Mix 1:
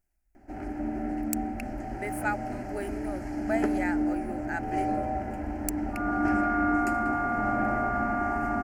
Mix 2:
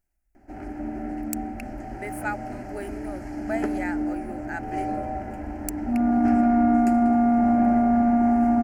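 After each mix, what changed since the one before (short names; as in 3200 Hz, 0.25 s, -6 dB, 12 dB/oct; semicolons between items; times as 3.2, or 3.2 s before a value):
second sound: remove resonant high-pass 1300 Hz, resonance Q 3.9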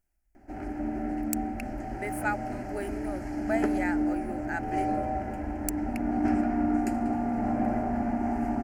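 second sound -12.0 dB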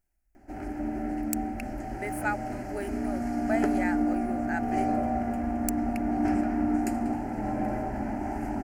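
first sound: add high shelf 6400 Hz +7 dB; second sound: entry -3.00 s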